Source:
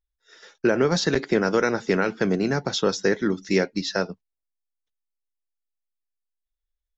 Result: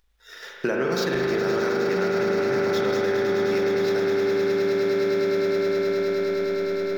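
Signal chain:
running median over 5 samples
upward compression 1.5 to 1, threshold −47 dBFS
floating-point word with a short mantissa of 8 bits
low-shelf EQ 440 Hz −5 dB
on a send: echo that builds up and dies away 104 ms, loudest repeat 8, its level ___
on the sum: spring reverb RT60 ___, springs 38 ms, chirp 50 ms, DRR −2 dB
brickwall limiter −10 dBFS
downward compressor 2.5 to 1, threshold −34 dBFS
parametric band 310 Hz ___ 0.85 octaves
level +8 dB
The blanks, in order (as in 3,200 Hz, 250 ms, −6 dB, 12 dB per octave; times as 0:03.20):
−8.5 dB, 3.1 s, −2 dB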